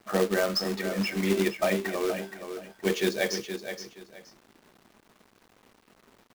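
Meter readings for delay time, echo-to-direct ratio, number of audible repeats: 472 ms, −9.0 dB, 2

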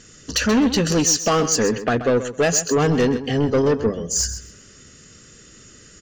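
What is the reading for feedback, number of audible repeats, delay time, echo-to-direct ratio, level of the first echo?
20%, 2, 130 ms, −12.0 dB, −12.0 dB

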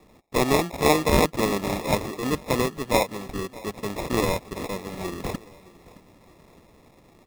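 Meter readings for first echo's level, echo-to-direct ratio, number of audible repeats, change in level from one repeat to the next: −21.0 dB, −20.0 dB, 2, −5.5 dB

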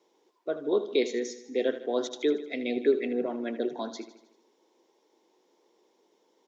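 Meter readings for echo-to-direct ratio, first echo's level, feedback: −11.0 dB, −12.5 dB, 54%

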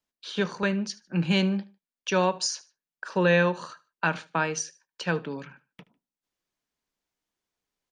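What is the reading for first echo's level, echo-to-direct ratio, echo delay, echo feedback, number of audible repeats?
−21.0 dB, −20.5 dB, 75 ms, 33%, 2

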